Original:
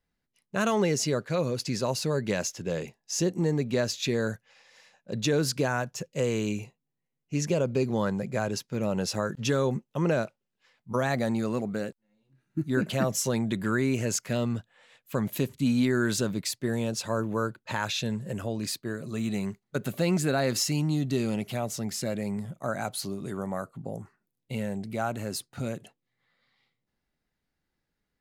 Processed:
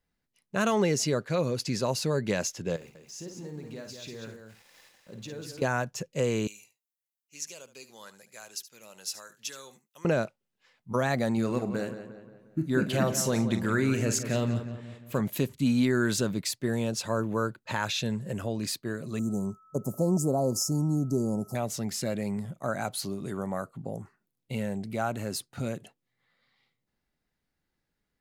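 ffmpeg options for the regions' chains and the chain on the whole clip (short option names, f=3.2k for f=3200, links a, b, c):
-filter_complex "[0:a]asettb=1/sr,asplit=3[a][b][c];[a]atrim=end=2.764[d];[b]atrim=start=2.76:end=5.62,asetpts=PTS-STARTPTS,afade=t=in:d=0.004:c=qsin,afade=t=out:st=2.856:d=0.004:c=qsin,acompressor=threshold=-52dB:ratio=2:attack=3.2:release=140:knee=1:detection=peak,aeval=exprs='val(0)*gte(abs(val(0)),0.00158)':c=same,aecho=1:1:53|191|263:0.447|0.501|0.106,atrim=end_sample=126126[e];[c]atrim=start=5.616[f];[d][e]acrossfade=d=0.004:c1=hsin:c2=qsin[g];[g][f]acrossfade=d=0.004:c1=qsin:c2=hsin,asettb=1/sr,asplit=3[h][i][j];[h]atrim=end=6.474[k];[i]atrim=start=6.47:end=10.05,asetpts=PTS-STARTPTS,afade=t=in:d=0.004:c=qsin,afade=t=out:st=3.576:d=0.004:c=qsin,aderivative,aecho=1:1:73:0.188,atrim=end_sample=157878[l];[j]atrim=start=10.046[m];[k][l]acrossfade=d=0.004:c1=hsin:c2=qsin[n];[n][m]acrossfade=d=0.004:c1=qsin:c2=hsin,asettb=1/sr,asplit=3[o][p][q];[o]atrim=end=11.334[r];[p]atrim=start=11.33:end=15.21,asetpts=PTS-STARTPTS,afade=t=in:d=0.004:c=qsin,afade=t=out:st=3.876:d=0.004:c=qsin,asplit=2[s][t];[t]adelay=44,volume=-11dB[u];[s][u]amix=inputs=2:normalize=0,atrim=end_sample=171108,asplit=2[v][w];[w]adelay=177,lowpass=f=3.1k:p=1,volume=-10dB,asplit=2[x][y];[y]adelay=177,lowpass=f=3.1k:p=1,volume=0.5,asplit=2[z][aa];[aa]adelay=177,lowpass=f=3.1k:p=1,volume=0.5,asplit=2[ab][ac];[ac]adelay=177,lowpass=f=3.1k:p=1,volume=0.5,asplit=2[ad][ae];[ae]adelay=177,lowpass=f=3.1k:p=1,volume=0.5[af];[v][x][z][ab][ad][af]amix=inputs=6:normalize=0,atrim=end_sample=171108[ag];[q]atrim=start=15.206[ah];[r][ag]acrossfade=d=0.004:c1=hsin:c2=qsin[ai];[ai][ah]acrossfade=d=0.004:c1=qsin:c2=hsin,asettb=1/sr,asplit=3[aj][ak][al];[aj]atrim=end=19.194[am];[ak]atrim=start=19.19:end=21.55,asetpts=PTS-STARTPTS,afade=t=in:d=0.004:c=qsin,afade=t=out:st=2.356:d=0.004:c=qsin,asuperstop=centerf=2400:order=12:qfactor=0.55,aeval=exprs='val(0)+0.00158*sin(2*PI*1300*n/s)':c=same[an];[al]atrim=start=21.546[ao];[am][an]acrossfade=d=0.004:c1=hsin:c2=qsin[ap];[ap][ao]acrossfade=d=0.004:c1=qsin:c2=hsin"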